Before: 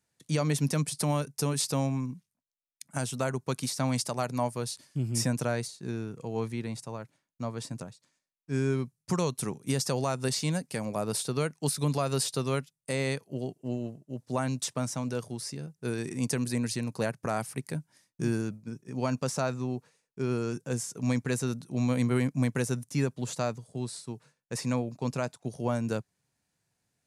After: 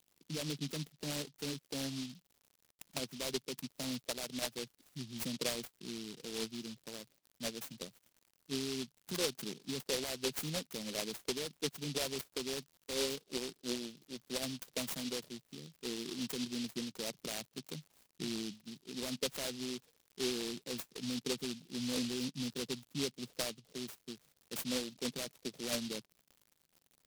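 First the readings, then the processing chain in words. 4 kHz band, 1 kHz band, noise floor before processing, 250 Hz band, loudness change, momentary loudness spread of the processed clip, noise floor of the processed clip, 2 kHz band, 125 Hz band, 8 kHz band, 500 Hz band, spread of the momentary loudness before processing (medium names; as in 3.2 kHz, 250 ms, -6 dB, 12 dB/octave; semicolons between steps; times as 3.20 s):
+0.5 dB, -14.5 dB, -85 dBFS, -9.5 dB, -8.5 dB, 10 LU, -78 dBFS, -7.0 dB, -18.0 dB, -6.5 dB, -9.0 dB, 10 LU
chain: resonances exaggerated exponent 2; high-pass 170 Hz 24 dB/octave; peak limiter -24 dBFS, peak gain reduction 6.5 dB; LFO low-pass sine 2.9 Hz 470–7400 Hz; crackle 130 per s -42 dBFS; delay time shaken by noise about 3.9 kHz, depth 0.28 ms; trim -8 dB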